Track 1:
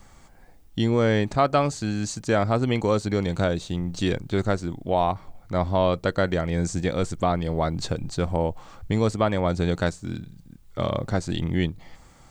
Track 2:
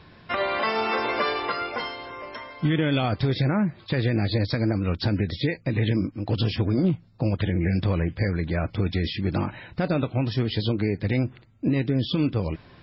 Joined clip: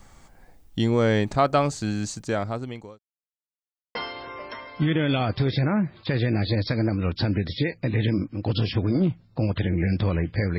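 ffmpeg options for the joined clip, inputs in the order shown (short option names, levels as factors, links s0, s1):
-filter_complex "[0:a]apad=whole_dur=10.58,atrim=end=10.58,asplit=2[s0][s1];[s0]atrim=end=2.99,asetpts=PTS-STARTPTS,afade=t=out:st=1.92:d=1.07[s2];[s1]atrim=start=2.99:end=3.95,asetpts=PTS-STARTPTS,volume=0[s3];[1:a]atrim=start=1.78:end=8.41,asetpts=PTS-STARTPTS,afade=t=in:d=0.004:c=hsin[s4];[s2][s3][s4]concat=n=3:v=0:a=1"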